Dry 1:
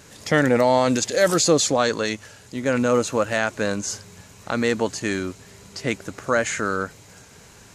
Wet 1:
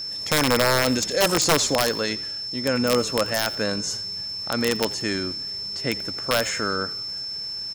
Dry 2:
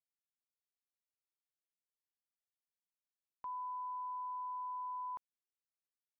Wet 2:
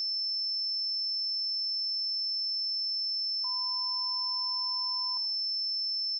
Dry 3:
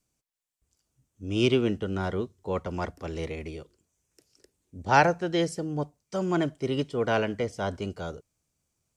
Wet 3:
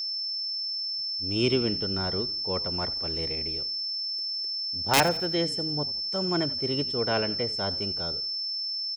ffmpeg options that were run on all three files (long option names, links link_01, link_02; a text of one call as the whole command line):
ffmpeg -i in.wav -filter_complex "[0:a]aeval=exprs='(mod(2.99*val(0)+1,2)-1)/2.99':channel_layout=same,aeval=exprs='val(0)+0.0447*sin(2*PI*5300*n/s)':channel_layout=same,asplit=5[link_01][link_02][link_03][link_04][link_05];[link_02]adelay=86,afreqshift=-40,volume=-18.5dB[link_06];[link_03]adelay=172,afreqshift=-80,volume=-25.4dB[link_07];[link_04]adelay=258,afreqshift=-120,volume=-32.4dB[link_08];[link_05]adelay=344,afreqshift=-160,volume=-39.3dB[link_09];[link_01][link_06][link_07][link_08][link_09]amix=inputs=5:normalize=0,volume=-2dB" out.wav